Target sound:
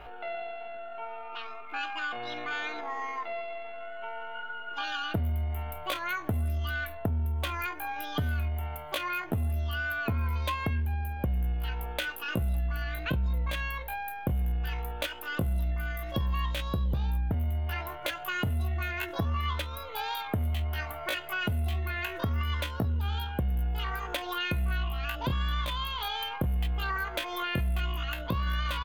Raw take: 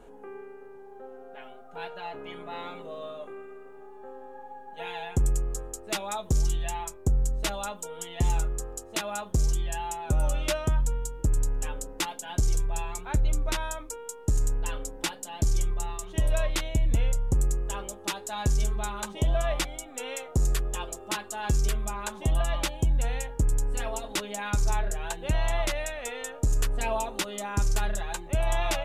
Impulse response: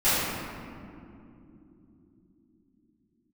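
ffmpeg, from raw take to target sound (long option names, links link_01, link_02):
-filter_complex "[0:a]asplit=2[link_01][link_02];[link_02]adelay=28,volume=-13dB[link_03];[link_01][link_03]amix=inputs=2:normalize=0,asetrate=76340,aresample=44100,atempo=0.577676,highshelf=frequency=4200:width_type=q:width=3:gain=-8.5,acompressor=threshold=-35dB:ratio=3,asplit=2[link_04][link_05];[1:a]atrim=start_sample=2205,asetrate=83790,aresample=44100[link_06];[link_05][link_06]afir=irnorm=-1:irlink=0,volume=-36dB[link_07];[link_04][link_07]amix=inputs=2:normalize=0,volume=4.5dB"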